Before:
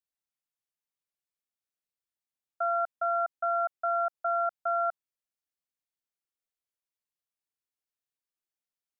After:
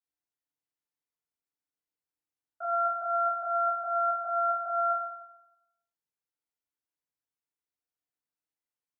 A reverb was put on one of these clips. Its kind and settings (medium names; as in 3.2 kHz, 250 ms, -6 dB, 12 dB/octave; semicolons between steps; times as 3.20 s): FDN reverb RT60 0.9 s, low-frequency decay 1×, high-frequency decay 0.3×, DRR -7.5 dB; trim -10 dB